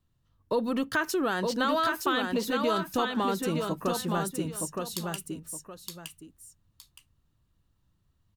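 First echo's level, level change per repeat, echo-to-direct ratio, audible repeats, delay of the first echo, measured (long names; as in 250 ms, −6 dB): −4.0 dB, −11.5 dB, −3.5 dB, 2, 917 ms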